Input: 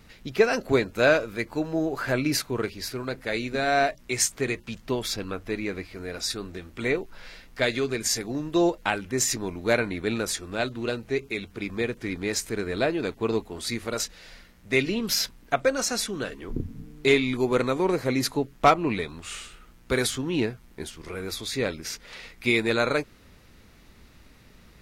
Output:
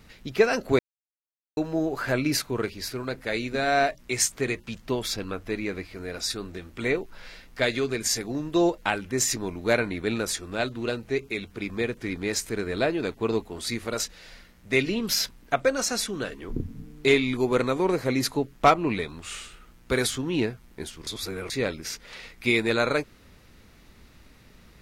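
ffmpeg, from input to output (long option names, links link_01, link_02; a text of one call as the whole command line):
ffmpeg -i in.wav -filter_complex "[0:a]asplit=5[link_01][link_02][link_03][link_04][link_05];[link_01]atrim=end=0.79,asetpts=PTS-STARTPTS,afade=type=out:start_time=0.786:duration=0.004:curve=hsin[link_06];[link_02]atrim=start=0.79:end=1.57,asetpts=PTS-STARTPTS,volume=0[link_07];[link_03]atrim=start=1.57:end=21.072,asetpts=PTS-STARTPTS,afade=type=in:duration=0.004:curve=hsin[link_08];[link_04]atrim=start=21.068:end=21.502,asetpts=PTS-STARTPTS,areverse[link_09];[link_05]atrim=start=21.498[link_10];[link_06][link_07][link_08]concat=n=3:v=0:a=1[link_11];[link_11][link_09]acrossfade=duration=0.004:curve1=hsin:curve2=hsin[link_12];[link_12][link_10]acrossfade=duration=0.004:curve1=hsin:curve2=hsin" out.wav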